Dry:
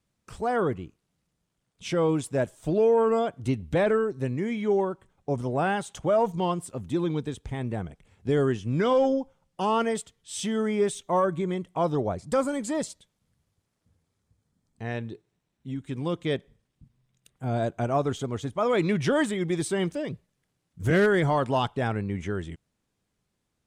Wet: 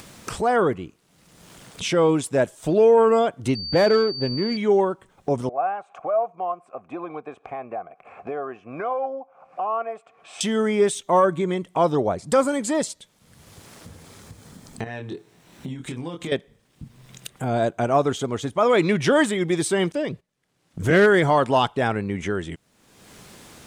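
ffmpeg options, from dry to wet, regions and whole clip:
ffmpeg -i in.wav -filter_complex "[0:a]asettb=1/sr,asplit=3[link_01][link_02][link_03];[link_01]atrim=end=3.554[link_04];[link_02]atrim=start=3.55:end=4.57,asetpts=PTS-STARTPTS,afade=type=in:duration=0.004:curve=qsin,afade=type=out:start_time=1.016:duration=0.004:curve=qsin,highshelf=frequency=2900:gain=-8.5,adynamicsmooth=sensitivity=7:basefreq=830,aeval=exprs='val(0)+0.0141*sin(2*PI*4600*n/s)':channel_layout=same[link_05];[link_03]atrim=start=4.566[link_06];[link_04][link_05]acrossfade=duration=0.004:curve1=hsin:curve2=qsin[link_07];[link_07][link_06]acrossfade=duration=0.004:curve1=qsin:curve2=hsin,asettb=1/sr,asplit=3[link_08][link_09][link_10];[link_08]atrim=end=5.494[link_11];[link_09]atrim=start=5.49:end=10.41,asetpts=PTS-STARTPTS,afade=type=in:duration=0.004:curve=qsin,afade=type=out:start_time=4.916:duration=0.004:curve=qsin,highshelf=frequency=2500:width_type=q:width=3:gain=-8,acompressor=mode=upward:threshold=-38dB:ratio=2.5:attack=3.2:release=140:knee=2.83:detection=peak,asplit=3[link_12][link_13][link_14];[link_12]bandpass=frequency=730:width_type=q:width=8,volume=0dB[link_15];[link_13]bandpass=frequency=1090:width_type=q:width=8,volume=-6dB[link_16];[link_14]bandpass=frequency=2440:width_type=q:width=8,volume=-9dB[link_17];[link_15][link_16][link_17]amix=inputs=3:normalize=0[link_18];[link_10]atrim=start=10.406[link_19];[link_11][link_18]acrossfade=duration=0.004:curve1=hsin:curve2=qsin[link_20];[link_20][link_19]acrossfade=duration=0.004:curve1=qsin:curve2=hsin,asettb=1/sr,asplit=3[link_21][link_22][link_23];[link_21]atrim=end=14.844[link_24];[link_22]atrim=start=14.84:end=16.32,asetpts=PTS-STARTPTS,afade=type=in:duration=0.004:curve=qsin,afade=type=out:start_time=1.476:duration=0.004:curve=qsin,acompressor=threshold=-42dB:ratio=4:attack=3.2:release=140:knee=1:detection=peak,asplit=2[link_25][link_26];[link_26]adelay=24,volume=-4dB[link_27];[link_25][link_27]amix=inputs=2:normalize=0,atrim=end_sample=65268[link_28];[link_23]atrim=start=16.316[link_29];[link_24][link_28]acrossfade=duration=0.004:curve1=hsin:curve2=qsin[link_30];[link_30][link_29]acrossfade=duration=0.004:curve1=qsin:curve2=hsin,asettb=1/sr,asplit=3[link_31][link_32][link_33];[link_31]atrim=end=19.924[link_34];[link_32]atrim=start=19.92:end=21.07,asetpts=PTS-STARTPTS,afade=type=in:duration=0.004:curve=qsin,afade=type=out:start_time=1.146:duration=0.004:curve=qsin,agate=range=-15dB:threshold=-52dB:ratio=16:release=100:detection=peak,highshelf=frequency=9400:gain=-7[link_35];[link_33]atrim=start=21.066[link_36];[link_34][link_35]acrossfade=duration=0.004:curve1=hsin:curve2=qsin[link_37];[link_37][link_36]acrossfade=duration=0.004:curve1=qsin:curve2=hsin,lowshelf=frequency=140:gain=-11.5,acompressor=mode=upward:threshold=-30dB:ratio=2.5,volume=7dB" out.wav

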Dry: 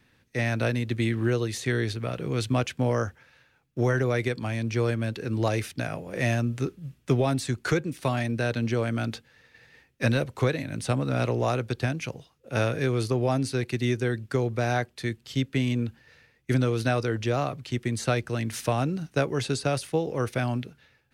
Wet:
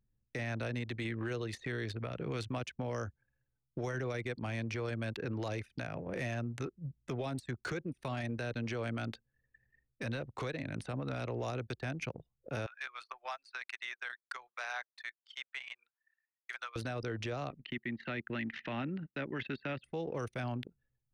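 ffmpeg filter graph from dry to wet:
ffmpeg -i in.wav -filter_complex "[0:a]asettb=1/sr,asplit=3[link_01][link_02][link_03];[link_01]atrim=end=12.664[link_04];[link_02]atrim=start=12.66:end=16.76,asetpts=PTS-STARTPTS,afade=type=in:duration=0.004:curve=qsin,afade=type=out:start_time=4.096:duration=0.004:curve=qsin,highpass=frequency=1000:width=0.5412,highpass=frequency=1000:width=1.3066,highshelf=frequency=6600:gain=-7.5[link_05];[link_03]atrim=start=16.756[link_06];[link_04][link_05]acrossfade=duration=0.004:curve1=hsin:curve2=qsin[link_07];[link_07][link_06]acrossfade=duration=0.004:curve1=qsin:curve2=hsin,asettb=1/sr,asplit=3[link_08][link_09][link_10];[link_08]atrim=end=17.504[link_11];[link_09]atrim=start=17.5:end=19.84,asetpts=PTS-STARTPTS,afade=type=in:duration=0.004:curve=qsin,afade=type=out:start_time=2.336:duration=0.004:curve=qsin,agate=range=-33dB:threshold=-45dB:ratio=3:release=100:detection=peak,highpass=200,equalizer=frequency=220:width_type=q:width=4:gain=4,equalizer=frequency=460:width_type=q:width=4:gain=-10,equalizer=frequency=700:width_type=q:width=4:gain=-9,equalizer=frequency=1100:width_type=q:width=4:gain=-5,equalizer=frequency=1900:width_type=q:width=4:gain=8,equalizer=frequency=2900:width_type=q:width=4:gain=3,lowpass=frequency=3500:width=0.5412,lowpass=frequency=3500:width=1.3066[link_12];[link_10]atrim=start=19.836[link_13];[link_11][link_12]acrossfade=duration=0.004:curve1=hsin:curve2=qsin[link_14];[link_14][link_13]acrossfade=duration=0.004:curve1=qsin:curve2=hsin,acrossover=split=510|2600[link_15][link_16][link_17];[link_15]acompressor=threshold=-38dB:ratio=4[link_18];[link_16]acompressor=threshold=-40dB:ratio=4[link_19];[link_17]acompressor=threshold=-48dB:ratio=4[link_20];[link_18][link_19][link_20]amix=inputs=3:normalize=0,anlmdn=0.251,alimiter=level_in=6dB:limit=-24dB:level=0:latency=1:release=17,volume=-6dB,volume=1dB" out.wav

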